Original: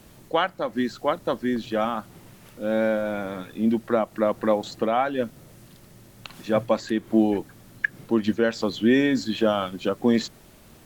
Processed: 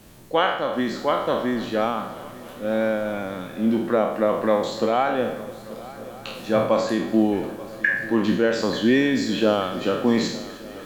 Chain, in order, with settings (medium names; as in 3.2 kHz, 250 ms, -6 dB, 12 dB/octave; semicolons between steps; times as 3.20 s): spectral sustain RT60 0.73 s; multi-head delay 295 ms, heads first and third, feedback 70%, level -20 dB